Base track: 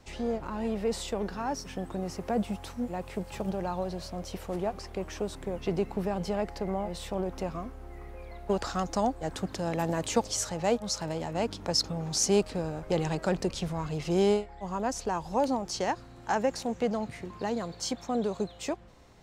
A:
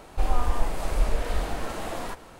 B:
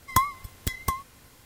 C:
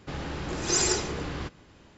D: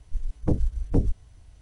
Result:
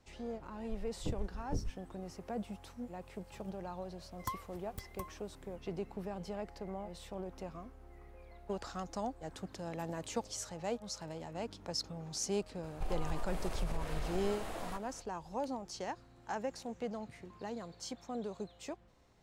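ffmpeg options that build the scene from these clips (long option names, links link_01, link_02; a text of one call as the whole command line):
ffmpeg -i bed.wav -i cue0.wav -i cue1.wav -i cue2.wav -i cue3.wav -filter_complex "[0:a]volume=-11dB[link_01];[2:a]equalizer=frequency=4800:width=0.3:gain=-5[link_02];[1:a]acompressor=threshold=-21dB:ratio=6:attack=3.2:release=140:knee=1:detection=peak[link_03];[4:a]atrim=end=1.61,asetpts=PTS-STARTPTS,volume=-15dB,afade=type=in:duration=0.004:curve=hsin,afade=type=out:start_time=1.606:duration=0.004:curve=hsin,adelay=580[link_04];[link_02]atrim=end=1.45,asetpts=PTS-STARTPTS,volume=-16dB,afade=type=in:duration=0.004:curve=hsin,afade=type=out:start_time=1.446:duration=0.004:curve=hsin,adelay=4110[link_05];[link_03]atrim=end=2.39,asetpts=PTS-STARTPTS,volume=-9.5dB,afade=type=in:duration=0.004:curve=hsin,afade=type=out:start_time=2.386:duration=0.004:curve=hsin,adelay=12630[link_06];[link_01][link_04][link_05][link_06]amix=inputs=4:normalize=0" out.wav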